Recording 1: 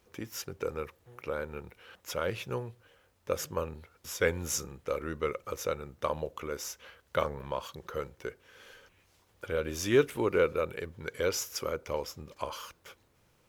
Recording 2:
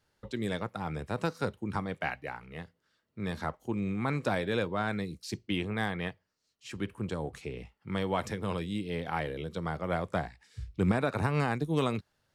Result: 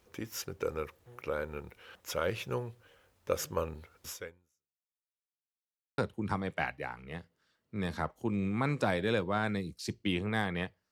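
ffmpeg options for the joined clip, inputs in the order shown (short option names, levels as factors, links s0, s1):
-filter_complex "[0:a]apad=whole_dur=10.91,atrim=end=10.91,asplit=2[s0][s1];[s0]atrim=end=5.01,asetpts=PTS-STARTPTS,afade=t=out:st=4.09:d=0.92:c=exp[s2];[s1]atrim=start=5.01:end=5.98,asetpts=PTS-STARTPTS,volume=0[s3];[1:a]atrim=start=1.42:end=6.35,asetpts=PTS-STARTPTS,afade=t=in:d=0.004:c=hsin[s4];[s2][s3][s4]concat=n=3:v=0:a=1"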